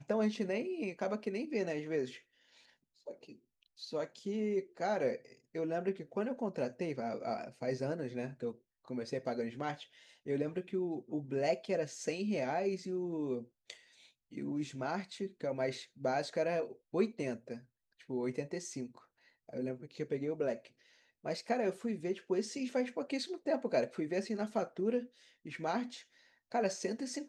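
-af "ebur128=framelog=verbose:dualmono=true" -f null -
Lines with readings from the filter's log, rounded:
Integrated loudness:
  I:         -34.5 LUFS
  Threshold: -45.2 LUFS
Loudness range:
  LRA:         4.2 LU
  Threshold: -55.3 LUFS
  LRA low:   -37.6 LUFS
  LRA high:  -33.4 LUFS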